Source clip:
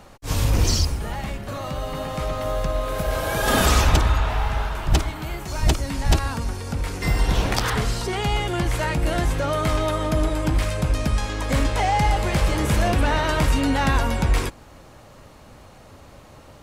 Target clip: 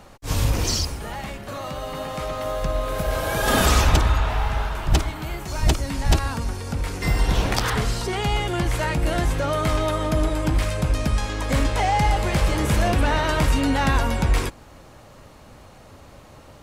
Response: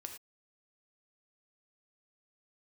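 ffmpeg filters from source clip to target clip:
-filter_complex "[0:a]asettb=1/sr,asplit=3[a][b][c];[a]atrim=end=0.524[d];[b]atrim=start=0.52:end=2.62,asetpts=PTS-STARTPTS,afade=t=in:d=0.004:c=qsin,afade=t=out:st=2.096:d=0.004:c=qsin,lowshelf=f=180:g=-7[e];[c]atrim=start=2.616[f];[d][e]acrossfade=d=0.004:c1=hsin:c2=qsin[g];[g][f]acrossfade=d=0.004:c1=qsin:c2=hsin"

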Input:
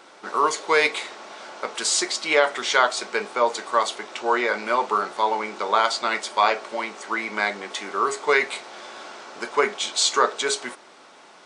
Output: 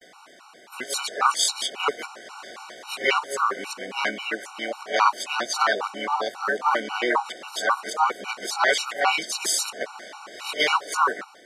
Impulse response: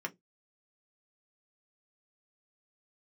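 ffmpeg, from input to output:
-filter_complex "[0:a]areverse,asplit=2[a][b];[b]asetrate=58866,aresample=44100,atempo=0.749154,volume=-3dB[c];[a][c]amix=inputs=2:normalize=0,afftfilt=real='re*gt(sin(2*PI*3.7*pts/sr)*(1-2*mod(floor(b*sr/1024/750),2)),0)':imag='im*gt(sin(2*PI*3.7*pts/sr)*(1-2*mod(floor(b*sr/1024/750),2)),0)':win_size=1024:overlap=0.75"

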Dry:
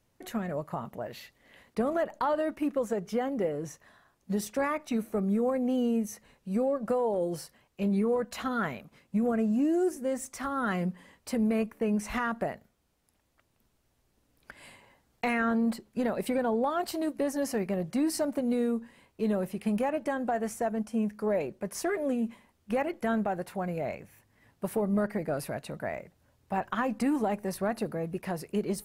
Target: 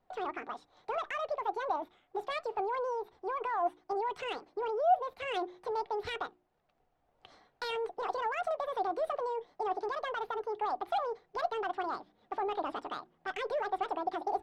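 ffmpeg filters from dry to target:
-filter_complex "[0:a]flanger=delay=4.1:depth=2.7:regen=68:speed=1.6:shape=sinusoidal,asetrate=88200,aresample=44100,acrossover=split=3800[a][b];[a]alimiter=level_in=6dB:limit=-24dB:level=0:latency=1:release=16,volume=-6dB[c];[c][b]amix=inputs=2:normalize=0,adynamicsmooth=sensitivity=4:basefreq=3.3k,equalizer=f=740:t=o:w=0.38:g=13,bandreject=f=60:t=h:w=6,bandreject=f=120:t=h:w=6,bandreject=f=180:t=h:w=6,bandreject=f=240:t=h:w=6,bandreject=f=300:t=h:w=6,bandreject=f=360:t=h:w=6"

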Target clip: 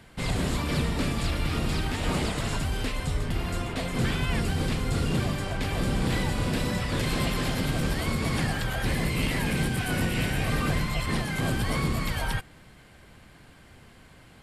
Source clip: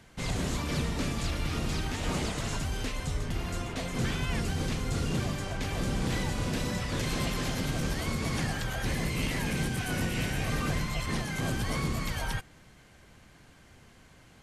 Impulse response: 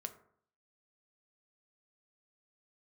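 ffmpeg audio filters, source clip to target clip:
-af "equalizer=f=6.2k:t=o:w=0.31:g=-9,volume=4dB"

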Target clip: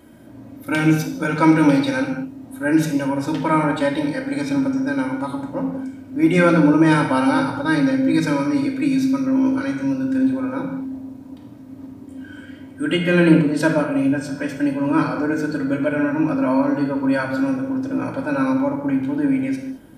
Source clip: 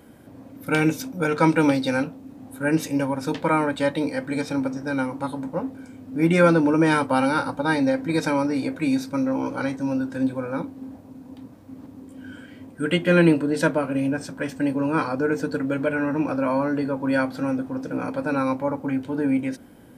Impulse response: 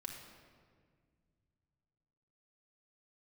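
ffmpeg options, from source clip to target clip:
-filter_complex "[0:a]asettb=1/sr,asplit=3[a][b][c];[a]atrim=end=7.584[d];[b]atrim=start=7.58:end=10.16,asetpts=PTS-STARTPTS,afade=t=in:d=0.004:c=qsin,afade=t=out:st=2.576:d=0.004:c=qsin,equalizer=f=790:t=o:w=0.6:g=-7.5[e];[c]atrim=start=10.156[f];[d][e]acrossfade=d=0.004:c1=hsin:c2=qsin[g];[g][f]acrossfade=d=0.004:c1=qsin:c2=hsin[h];[1:a]atrim=start_sample=2205,afade=t=out:st=0.33:d=0.01,atrim=end_sample=14994,asetrate=52920,aresample=44100[i];[h][i]afir=irnorm=-1:irlink=0,volume=6.5dB"

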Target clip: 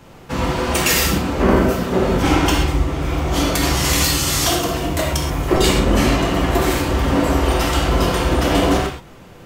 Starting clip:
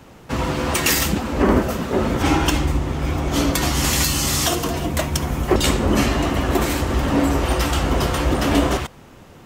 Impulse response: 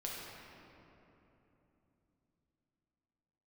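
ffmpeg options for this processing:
-filter_complex "[0:a]asettb=1/sr,asplit=3[a][b][c];[a]atrim=end=1.514[d];[b]atrim=start=1.51:end=3.62,asetpts=PTS-STARTPTS,afade=t=in:d=0.004:c=qsin,afade=t=out:st=2.106:d=0.004:c=qsin,asoftclip=type=hard:threshold=-7.5dB[e];[c]atrim=start=3.616[f];[d][e]acrossfade=d=0.004:c1=hsin:c2=qsin[g];[g][f]acrossfade=d=0.004:c1=qsin:c2=hsin[h];[1:a]atrim=start_sample=2205,atrim=end_sample=6174[i];[h][i]afir=irnorm=-1:irlink=0,volume=4dB"

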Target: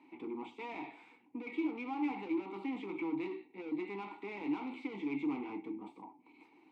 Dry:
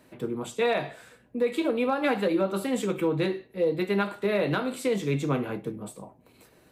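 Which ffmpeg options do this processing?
-filter_complex "[0:a]acrossover=split=4200[a][b];[b]acompressor=threshold=-55dB:ratio=4:attack=1:release=60[c];[a][c]amix=inputs=2:normalize=0,asplit=2[d][e];[e]highpass=f=720:p=1,volume=23dB,asoftclip=type=tanh:threshold=-16dB[f];[d][f]amix=inputs=2:normalize=0,lowpass=f=4.1k:p=1,volume=-6dB,asplit=3[g][h][i];[g]bandpass=f=300:t=q:w=8,volume=0dB[j];[h]bandpass=f=870:t=q:w=8,volume=-6dB[k];[i]bandpass=f=2.24k:t=q:w=8,volume=-9dB[l];[j][k][l]amix=inputs=3:normalize=0,volume=-4.5dB"

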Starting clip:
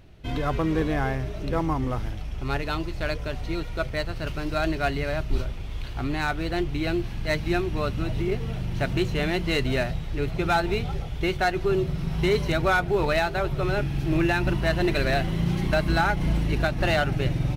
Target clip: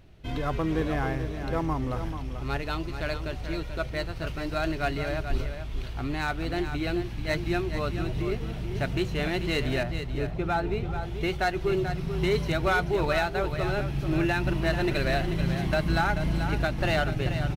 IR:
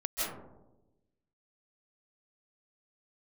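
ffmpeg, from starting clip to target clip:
-filter_complex "[0:a]asettb=1/sr,asplit=3[a][b][c];[a]atrim=end=9.834[d];[b]atrim=start=9.83:end=11.03,asetpts=PTS-STARTPTS,afade=t=in:d=0.004:c=qsin,afade=t=out:st=1.196:d=0.004:c=qsin,highshelf=f=2.2k:g=-10.5[e];[c]atrim=start=11.026[f];[d][e]acrossfade=d=0.004:c1=hsin:c2=qsin[g];[g][f]acrossfade=d=0.004:c1=qsin:c2=hsin,aecho=1:1:436:0.355,volume=-3dB"

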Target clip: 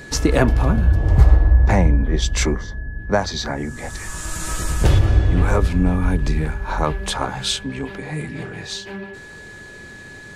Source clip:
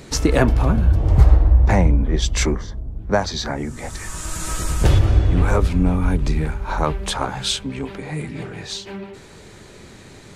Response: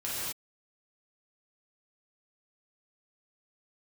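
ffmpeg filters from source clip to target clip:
-af "aeval=exprs='val(0)+0.0126*sin(2*PI*1700*n/s)':c=same"

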